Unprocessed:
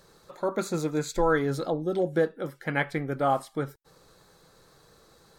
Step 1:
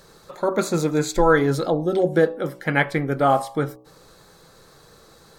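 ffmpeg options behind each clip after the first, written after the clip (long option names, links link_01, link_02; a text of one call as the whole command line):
ffmpeg -i in.wav -af "bandreject=frequency=62.33:width_type=h:width=4,bandreject=frequency=124.66:width_type=h:width=4,bandreject=frequency=186.99:width_type=h:width=4,bandreject=frequency=249.32:width_type=h:width=4,bandreject=frequency=311.65:width_type=h:width=4,bandreject=frequency=373.98:width_type=h:width=4,bandreject=frequency=436.31:width_type=h:width=4,bandreject=frequency=498.64:width_type=h:width=4,bandreject=frequency=560.97:width_type=h:width=4,bandreject=frequency=623.3:width_type=h:width=4,bandreject=frequency=685.63:width_type=h:width=4,bandreject=frequency=747.96:width_type=h:width=4,bandreject=frequency=810.29:width_type=h:width=4,bandreject=frequency=872.62:width_type=h:width=4,bandreject=frequency=934.95:width_type=h:width=4,bandreject=frequency=997.28:width_type=h:width=4,bandreject=frequency=1059.61:width_type=h:width=4,bandreject=frequency=1121.94:width_type=h:width=4,bandreject=frequency=1184.27:width_type=h:width=4,volume=7.5dB" out.wav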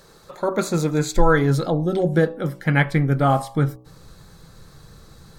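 ffmpeg -i in.wav -af "asubboost=boost=5:cutoff=200" out.wav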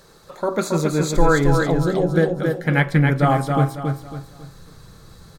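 ffmpeg -i in.wav -af "aecho=1:1:275|550|825|1100:0.596|0.208|0.073|0.0255" out.wav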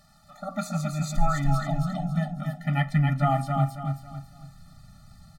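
ffmpeg -i in.wav -af "afftfilt=real='re*eq(mod(floor(b*sr/1024/290),2),0)':imag='im*eq(mod(floor(b*sr/1024/290),2),0)':win_size=1024:overlap=0.75,volume=-5dB" out.wav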